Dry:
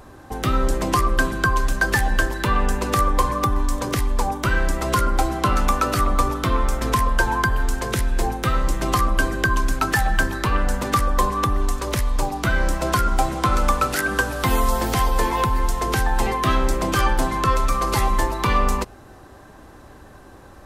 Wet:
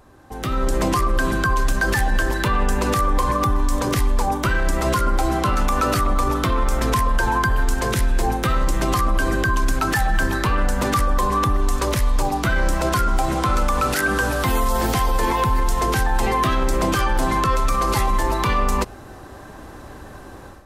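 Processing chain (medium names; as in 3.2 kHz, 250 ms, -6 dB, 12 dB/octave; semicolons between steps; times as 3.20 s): peak limiter -16 dBFS, peak gain reduction 9.5 dB; level rider gain up to 13 dB; trim -7 dB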